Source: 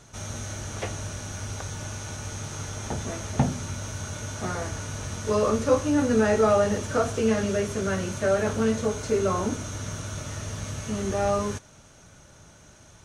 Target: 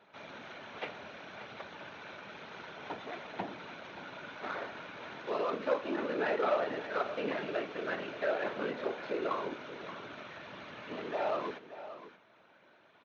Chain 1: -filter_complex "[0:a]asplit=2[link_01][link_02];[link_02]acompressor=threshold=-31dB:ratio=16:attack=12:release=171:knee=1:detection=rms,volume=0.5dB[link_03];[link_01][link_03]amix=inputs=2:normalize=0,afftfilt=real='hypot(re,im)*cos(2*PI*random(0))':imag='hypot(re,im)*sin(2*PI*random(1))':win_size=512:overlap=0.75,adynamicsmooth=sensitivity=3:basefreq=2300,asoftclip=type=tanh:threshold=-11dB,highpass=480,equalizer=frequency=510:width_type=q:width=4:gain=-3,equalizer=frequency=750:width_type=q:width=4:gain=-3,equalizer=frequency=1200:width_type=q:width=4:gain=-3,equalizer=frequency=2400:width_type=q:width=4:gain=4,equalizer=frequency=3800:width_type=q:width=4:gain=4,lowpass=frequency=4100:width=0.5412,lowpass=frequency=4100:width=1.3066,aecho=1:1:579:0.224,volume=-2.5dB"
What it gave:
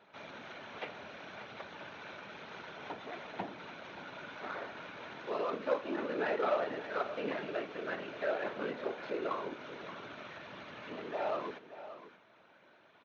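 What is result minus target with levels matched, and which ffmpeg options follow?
downward compressor: peak gain reduction +7 dB
-filter_complex "[0:a]asplit=2[link_01][link_02];[link_02]acompressor=threshold=-23.5dB:ratio=16:attack=12:release=171:knee=1:detection=rms,volume=0.5dB[link_03];[link_01][link_03]amix=inputs=2:normalize=0,afftfilt=real='hypot(re,im)*cos(2*PI*random(0))':imag='hypot(re,im)*sin(2*PI*random(1))':win_size=512:overlap=0.75,adynamicsmooth=sensitivity=3:basefreq=2300,asoftclip=type=tanh:threshold=-11dB,highpass=480,equalizer=frequency=510:width_type=q:width=4:gain=-3,equalizer=frequency=750:width_type=q:width=4:gain=-3,equalizer=frequency=1200:width_type=q:width=4:gain=-3,equalizer=frequency=2400:width_type=q:width=4:gain=4,equalizer=frequency=3800:width_type=q:width=4:gain=4,lowpass=frequency=4100:width=0.5412,lowpass=frequency=4100:width=1.3066,aecho=1:1:579:0.224,volume=-2.5dB"

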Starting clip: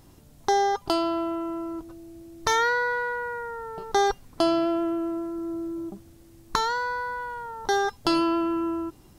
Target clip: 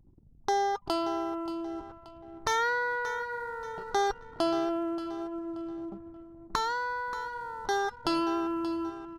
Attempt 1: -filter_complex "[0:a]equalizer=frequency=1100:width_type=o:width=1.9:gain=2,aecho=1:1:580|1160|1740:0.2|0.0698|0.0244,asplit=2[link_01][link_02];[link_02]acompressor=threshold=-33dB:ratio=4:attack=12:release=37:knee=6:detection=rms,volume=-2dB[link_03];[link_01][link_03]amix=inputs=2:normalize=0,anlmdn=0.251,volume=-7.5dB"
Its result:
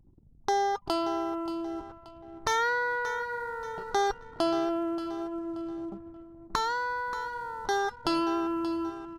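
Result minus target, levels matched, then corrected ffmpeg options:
downward compressor: peak gain reduction −5.5 dB
-filter_complex "[0:a]equalizer=frequency=1100:width_type=o:width=1.9:gain=2,aecho=1:1:580|1160|1740:0.2|0.0698|0.0244,asplit=2[link_01][link_02];[link_02]acompressor=threshold=-40.5dB:ratio=4:attack=12:release=37:knee=6:detection=rms,volume=-2dB[link_03];[link_01][link_03]amix=inputs=2:normalize=0,anlmdn=0.251,volume=-7.5dB"

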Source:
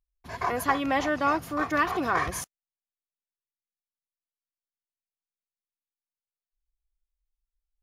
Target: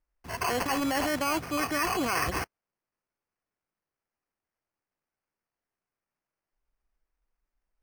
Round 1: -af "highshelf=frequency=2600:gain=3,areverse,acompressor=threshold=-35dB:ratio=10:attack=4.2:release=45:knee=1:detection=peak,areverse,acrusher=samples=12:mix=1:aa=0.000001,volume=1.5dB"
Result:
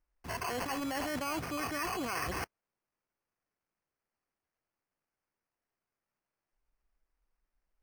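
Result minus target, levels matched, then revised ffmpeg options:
downward compressor: peak gain reduction +7.5 dB
-af "highshelf=frequency=2600:gain=3,areverse,acompressor=threshold=-26.5dB:ratio=10:attack=4.2:release=45:knee=1:detection=peak,areverse,acrusher=samples=12:mix=1:aa=0.000001,volume=1.5dB"

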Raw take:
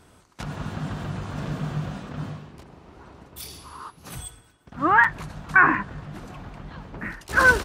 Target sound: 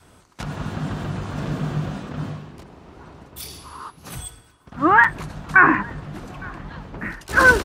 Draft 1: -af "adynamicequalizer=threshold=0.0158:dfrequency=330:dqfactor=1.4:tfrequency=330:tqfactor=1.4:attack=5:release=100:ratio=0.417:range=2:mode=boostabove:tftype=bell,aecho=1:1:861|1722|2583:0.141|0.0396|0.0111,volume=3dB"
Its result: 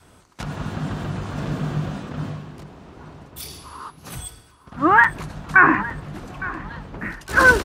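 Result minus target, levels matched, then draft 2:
echo-to-direct +8 dB
-af "adynamicequalizer=threshold=0.0158:dfrequency=330:dqfactor=1.4:tfrequency=330:tqfactor=1.4:attack=5:release=100:ratio=0.417:range=2:mode=boostabove:tftype=bell,aecho=1:1:861|1722:0.0562|0.0157,volume=3dB"

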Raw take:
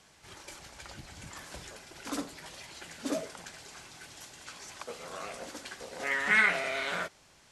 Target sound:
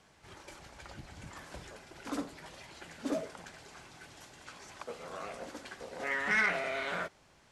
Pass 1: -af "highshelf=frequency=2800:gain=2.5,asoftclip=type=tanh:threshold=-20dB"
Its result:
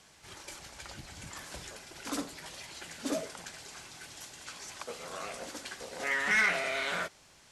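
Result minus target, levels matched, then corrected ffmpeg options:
4,000 Hz band +5.5 dB
-af "highshelf=frequency=2800:gain=-9,asoftclip=type=tanh:threshold=-20dB"

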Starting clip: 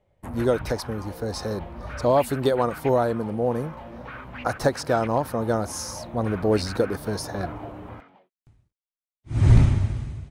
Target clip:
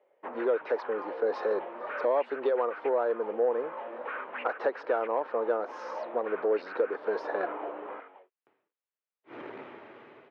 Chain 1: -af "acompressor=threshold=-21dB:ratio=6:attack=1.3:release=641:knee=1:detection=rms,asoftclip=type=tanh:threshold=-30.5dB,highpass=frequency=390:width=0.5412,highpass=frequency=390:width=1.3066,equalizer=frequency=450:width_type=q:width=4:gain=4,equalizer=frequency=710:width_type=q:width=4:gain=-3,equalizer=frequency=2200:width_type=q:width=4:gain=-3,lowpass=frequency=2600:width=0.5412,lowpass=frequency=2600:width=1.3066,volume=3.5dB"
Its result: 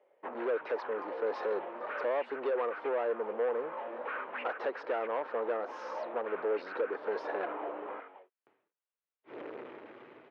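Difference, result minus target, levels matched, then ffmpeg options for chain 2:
soft clipping: distortion +13 dB
-af "acompressor=threshold=-21dB:ratio=6:attack=1.3:release=641:knee=1:detection=rms,asoftclip=type=tanh:threshold=-19dB,highpass=frequency=390:width=0.5412,highpass=frequency=390:width=1.3066,equalizer=frequency=450:width_type=q:width=4:gain=4,equalizer=frequency=710:width_type=q:width=4:gain=-3,equalizer=frequency=2200:width_type=q:width=4:gain=-3,lowpass=frequency=2600:width=0.5412,lowpass=frequency=2600:width=1.3066,volume=3.5dB"

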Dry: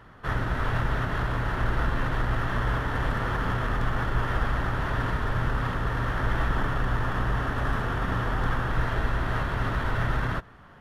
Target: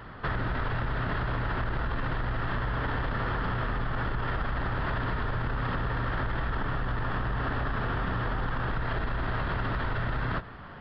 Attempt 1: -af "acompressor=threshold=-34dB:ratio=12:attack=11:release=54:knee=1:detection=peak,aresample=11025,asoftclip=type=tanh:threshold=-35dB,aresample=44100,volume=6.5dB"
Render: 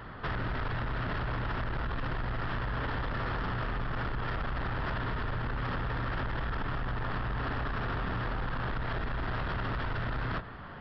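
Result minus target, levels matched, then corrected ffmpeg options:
soft clipping: distortion +14 dB
-af "acompressor=threshold=-34dB:ratio=12:attack=11:release=54:knee=1:detection=peak,aresample=11025,asoftclip=type=tanh:threshold=-24.5dB,aresample=44100,volume=6.5dB"

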